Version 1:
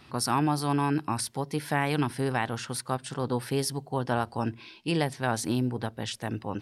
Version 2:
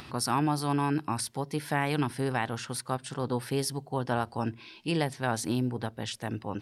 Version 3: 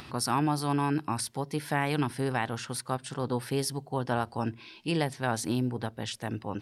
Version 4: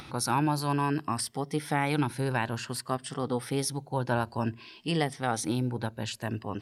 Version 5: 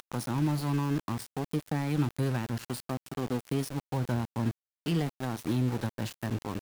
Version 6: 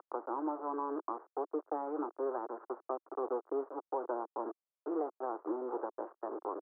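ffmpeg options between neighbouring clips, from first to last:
-af "acompressor=mode=upward:threshold=0.0141:ratio=2.5,volume=0.841"
-af anull
-af "afftfilt=real='re*pow(10,7/40*sin(2*PI*(1.4*log(max(b,1)*sr/1024/100)/log(2)-(0.55)*(pts-256)/sr)))':imag='im*pow(10,7/40*sin(2*PI*(1.4*log(max(b,1)*sr/1024/100)/log(2)-(0.55)*(pts-256)/sr)))':win_size=1024:overlap=0.75"
-filter_complex "[0:a]acrossover=split=310[s0][s1];[s1]acompressor=threshold=0.0112:ratio=8[s2];[s0][s2]amix=inputs=2:normalize=0,aeval=exprs='val(0)*gte(abs(val(0)),0.0141)':c=same,volume=1.33"
-af "asuperpass=centerf=660:order=12:qfactor=0.68,volume=1.19"

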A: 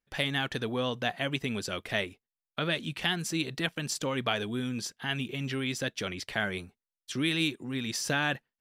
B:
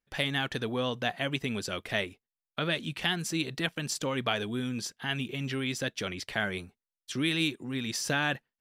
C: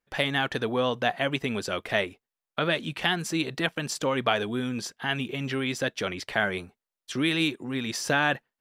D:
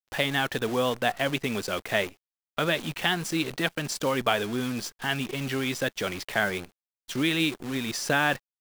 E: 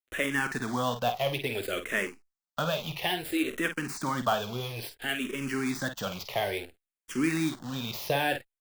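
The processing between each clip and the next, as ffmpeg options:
-af anull
-af "equalizer=f=790:w=0.4:g=7"
-af "acrusher=bits=7:dc=4:mix=0:aa=0.000001"
-filter_complex "[0:a]aecho=1:1:16|50:0.168|0.335,acrossover=split=730|3200[s0][s1][s2];[s2]aeval=exprs='(mod(33.5*val(0)+1,2)-1)/33.5':c=same[s3];[s0][s1][s3]amix=inputs=3:normalize=0,asplit=2[s4][s5];[s5]afreqshift=-0.59[s6];[s4][s6]amix=inputs=2:normalize=1"

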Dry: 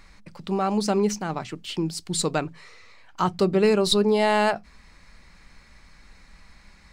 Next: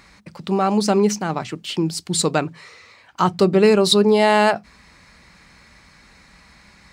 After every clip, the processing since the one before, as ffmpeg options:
-af "highpass=75,volume=1.88"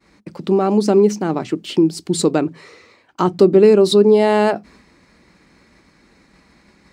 -filter_complex "[0:a]agate=range=0.0224:threshold=0.00631:ratio=3:detection=peak,equalizer=f=330:w=0.94:g=14,asplit=2[s0][s1];[s1]acompressor=threshold=0.178:ratio=6,volume=1.26[s2];[s0][s2]amix=inputs=2:normalize=0,volume=0.376"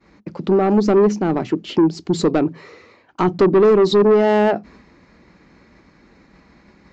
-af "highshelf=f=2800:g=-9.5,aresample=16000,asoftclip=type=tanh:threshold=0.266,aresample=44100,volume=1.41"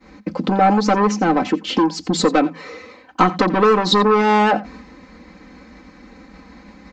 -filter_complex "[0:a]aecho=1:1:3.9:0.88,acrossover=split=610[s0][s1];[s0]acompressor=threshold=0.0794:ratio=6[s2];[s1]aecho=1:1:87:0.126[s3];[s2][s3]amix=inputs=2:normalize=0,volume=1.78"

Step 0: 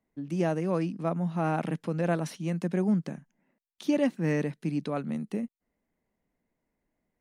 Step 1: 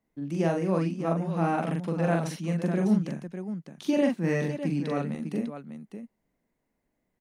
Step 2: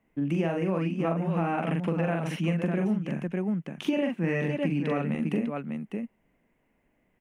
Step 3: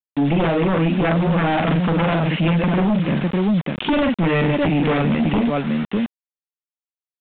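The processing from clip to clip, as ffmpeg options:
-af "aecho=1:1:42|600:0.708|0.355"
-af "highshelf=f=3400:t=q:w=3:g=-7,acompressor=threshold=0.0282:ratio=10,volume=2.37"
-af "acrusher=bits=6:mix=0:aa=0.000001,aeval=exprs='0.2*sin(PI/2*3.16*val(0)/0.2)':c=same,aresample=8000,aresample=44100"

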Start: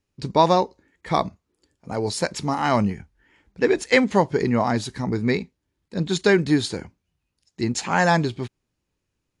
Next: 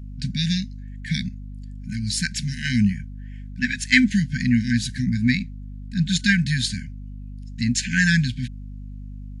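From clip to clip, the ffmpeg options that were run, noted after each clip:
-af "aeval=exprs='val(0)+0.0126*(sin(2*PI*50*n/s)+sin(2*PI*2*50*n/s)/2+sin(2*PI*3*50*n/s)/3+sin(2*PI*4*50*n/s)/4+sin(2*PI*5*50*n/s)/5)':c=same,afftfilt=real='re*(1-between(b*sr/4096,260,1500))':imag='im*(1-between(b*sr/4096,260,1500))':win_size=4096:overlap=0.75,volume=1.58"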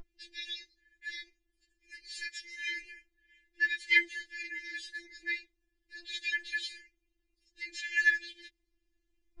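-filter_complex "[0:a]acrossover=split=3700[s0][s1];[s1]acompressor=threshold=0.02:ratio=4:attack=1:release=60[s2];[s0][s2]amix=inputs=2:normalize=0,aemphasis=mode=reproduction:type=75kf,afftfilt=real='re*4*eq(mod(b,16),0)':imag='im*4*eq(mod(b,16),0)':win_size=2048:overlap=0.75"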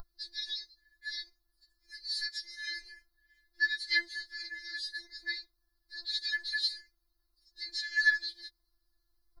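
-af "firequalizer=gain_entry='entry(130,0);entry(280,-14);entry(400,-6);entry(760,4);entry(1300,9);entry(2600,-26);entry(4200,11);entry(7000,-8);entry(11000,9)':delay=0.05:min_phase=1,volume=1.33"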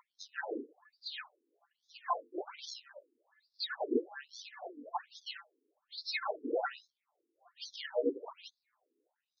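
-filter_complex "[0:a]acrossover=split=390|3000[s0][s1][s2];[s1]acompressor=threshold=0.00794:ratio=4[s3];[s0][s3][s2]amix=inputs=3:normalize=0,acrossover=split=330[s4][s5];[s5]acrusher=samples=27:mix=1:aa=0.000001:lfo=1:lforange=27:lforate=0.78[s6];[s4][s6]amix=inputs=2:normalize=0,afftfilt=real='re*between(b*sr/1024,330*pow(4800/330,0.5+0.5*sin(2*PI*1.2*pts/sr))/1.41,330*pow(4800/330,0.5+0.5*sin(2*PI*1.2*pts/sr))*1.41)':imag='im*between(b*sr/1024,330*pow(4800/330,0.5+0.5*sin(2*PI*1.2*pts/sr))/1.41,330*pow(4800/330,0.5+0.5*sin(2*PI*1.2*pts/sr))*1.41)':win_size=1024:overlap=0.75,volume=2.82"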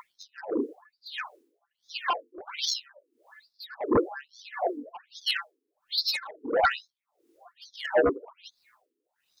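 -filter_complex "[0:a]asplit=2[s0][s1];[s1]alimiter=level_in=1.78:limit=0.0631:level=0:latency=1:release=154,volume=0.562,volume=1.19[s2];[s0][s2]amix=inputs=2:normalize=0,aeval=exprs='0.168*sin(PI/2*2.51*val(0)/0.168)':c=same,aeval=exprs='val(0)*pow(10,-22*(0.5-0.5*cos(2*PI*1.5*n/s))/20)':c=same"

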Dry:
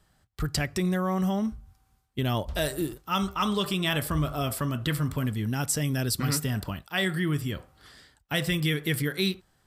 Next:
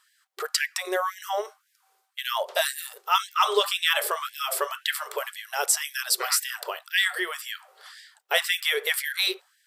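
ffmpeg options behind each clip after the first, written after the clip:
-af "lowshelf=f=450:g=6.5,afftfilt=real='re*gte(b*sr/1024,350*pow(1600/350,0.5+0.5*sin(2*PI*1.9*pts/sr)))':imag='im*gte(b*sr/1024,350*pow(1600/350,0.5+0.5*sin(2*PI*1.9*pts/sr)))':win_size=1024:overlap=0.75,volume=2"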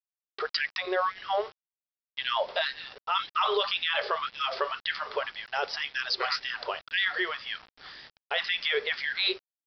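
-af "aresample=11025,acrusher=bits=7:mix=0:aa=0.000001,aresample=44100,alimiter=limit=0.141:level=0:latency=1:release=15"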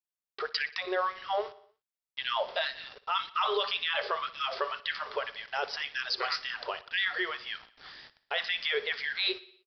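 -af "aecho=1:1:60|120|180|240|300:0.119|0.0677|0.0386|0.022|0.0125,volume=0.75"

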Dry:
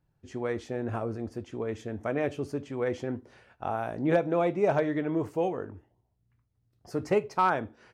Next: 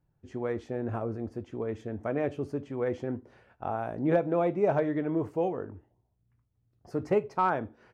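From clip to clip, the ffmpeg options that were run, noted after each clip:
-af "highshelf=f=2300:g=-10.5"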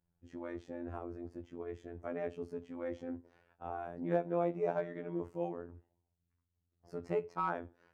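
-af "afftfilt=real='hypot(re,im)*cos(PI*b)':imag='0':win_size=2048:overlap=0.75,volume=0.531"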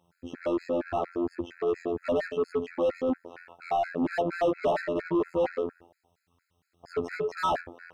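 -filter_complex "[0:a]asplit=2[s0][s1];[s1]highpass=f=720:p=1,volume=39.8,asoftclip=type=tanh:threshold=0.141[s2];[s0][s2]amix=inputs=2:normalize=0,lowpass=f=1800:p=1,volume=0.501,afftfilt=real='re*gt(sin(2*PI*4.3*pts/sr)*(1-2*mod(floor(b*sr/1024/1300),2)),0)':imag='im*gt(sin(2*PI*4.3*pts/sr)*(1-2*mod(floor(b*sr/1024/1300),2)),0)':win_size=1024:overlap=0.75,volume=1.19"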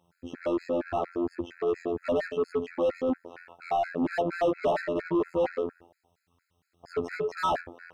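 -af anull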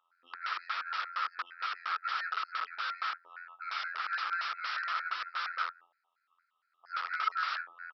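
-af "aresample=11025,aeval=exprs='(mod(26.6*val(0)+1,2)-1)/26.6':c=same,aresample=44100,highpass=f=1300:t=q:w=9.3,volume=0.422"

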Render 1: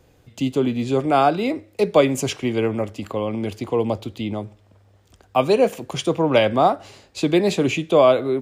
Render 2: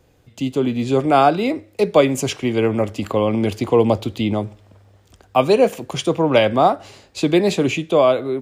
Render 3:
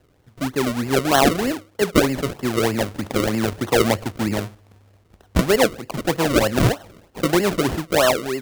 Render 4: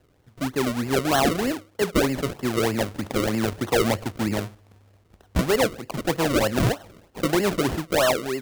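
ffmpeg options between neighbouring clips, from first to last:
-af "dynaudnorm=f=130:g=11:m=3.76,volume=0.891"
-af "acrusher=samples=36:mix=1:aa=0.000001:lfo=1:lforange=36:lforate=3.2,volume=0.75"
-af "asoftclip=type=hard:threshold=0.237,volume=0.75"

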